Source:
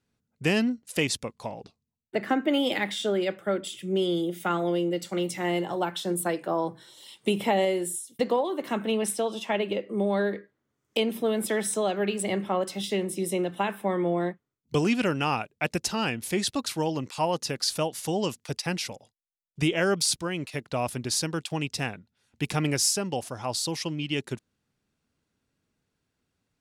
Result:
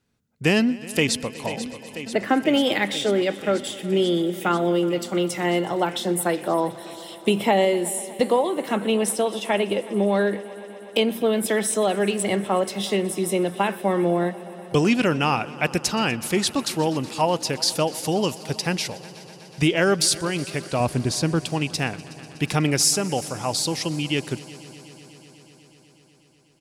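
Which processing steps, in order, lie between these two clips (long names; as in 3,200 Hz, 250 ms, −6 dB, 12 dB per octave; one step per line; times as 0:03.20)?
0:20.80–0:21.40: spectral tilt −2 dB per octave
echo machine with several playback heads 123 ms, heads all three, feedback 74%, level −24 dB
0:00.59–0:01.45: delay throw 490 ms, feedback 85%, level −12.5 dB
level +5 dB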